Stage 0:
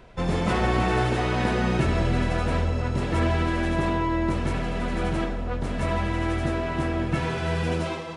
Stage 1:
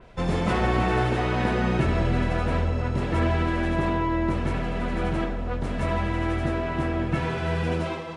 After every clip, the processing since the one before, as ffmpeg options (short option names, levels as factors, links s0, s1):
-af "adynamicequalizer=threshold=0.00501:dfrequency=3700:dqfactor=0.7:tfrequency=3700:tqfactor=0.7:attack=5:release=100:ratio=0.375:range=3:mode=cutabove:tftype=highshelf"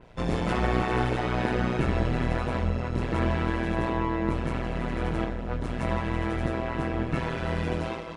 -af "tremolo=f=120:d=0.857,volume=1.12"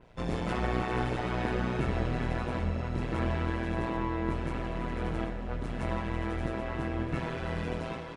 -af "aecho=1:1:779:0.299,volume=0.562"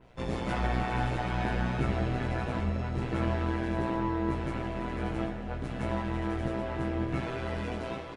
-filter_complex "[0:a]asplit=2[s0][s1];[s1]adelay=15,volume=0.75[s2];[s0][s2]amix=inputs=2:normalize=0,volume=0.841"